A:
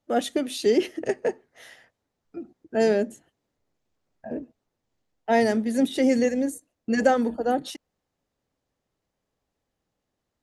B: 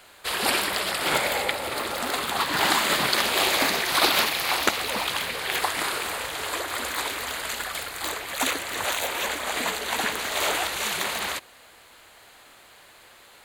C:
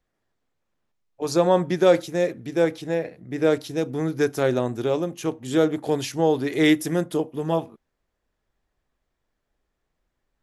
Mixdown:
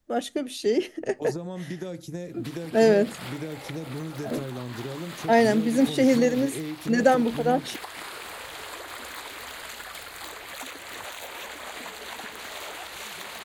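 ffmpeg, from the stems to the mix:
-filter_complex "[0:a]dynaudnorm=f=140:g=21:m=7dB,volume=-3.5dB[a];[1:a]acompressor=threshold=-31dB:ratio=4,equalizer=f=10k:t=o:w=1.4:g=-2,dynaudnorm=f=140:g=13:m=6dB,adelay=2200,volume=-10dB[b];[2:a]bass=f=250:g=7,treble=f=4k:g=9,acrossover=split=310|1600[c][d][e];[c]acompressor=threshold=-25dB:ratio=4[f];[d]acompressor=threshold=-31dB:ratio=4[g];[e]acompressor=threshold=-42dB:ratio=4[h];[f][g][h]amix=inputs=3:normalize=0,volume=-2dB[i];[b][i]amix=inputs=2:normalize=0,acompressor=threshold=-31dB:ratio=6,volume=0dB[j];[a][j]amix=inputs=2:normalize=0"

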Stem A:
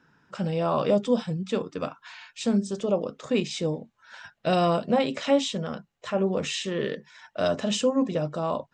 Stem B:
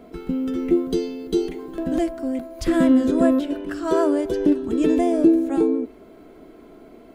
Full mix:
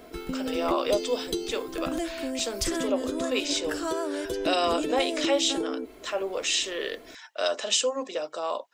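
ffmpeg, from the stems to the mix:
-filter_complex "[0:a]highpass=f=370:w=0.5412,highpass=f=370:w=1.3066,volume=-3dB[a];[1:a]equalizer=f=210:w=2.4:g=-8.5,acompressor=threshold=-26dB:ratio=6,volume=-2dB[b];[a][b]amix=inputs=2:normalize=0,highshelf=f=2.2k:g=11.5"

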